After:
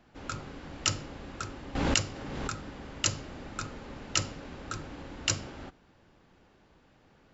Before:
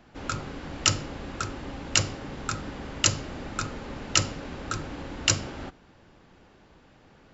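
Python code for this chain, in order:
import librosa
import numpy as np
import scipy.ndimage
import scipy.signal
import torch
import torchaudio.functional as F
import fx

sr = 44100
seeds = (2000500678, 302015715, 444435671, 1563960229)

y = fx.pre_swell(x, sr, db_per_s=27.0, at=(1.75, 2.64))
y = y * librosa.db_to_amplitude(-6.0)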